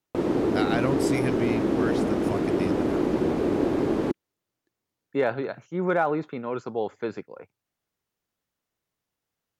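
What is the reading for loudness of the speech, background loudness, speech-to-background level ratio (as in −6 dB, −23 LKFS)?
−30.0 LKFS, −25.0 LKFS, −5.0 dB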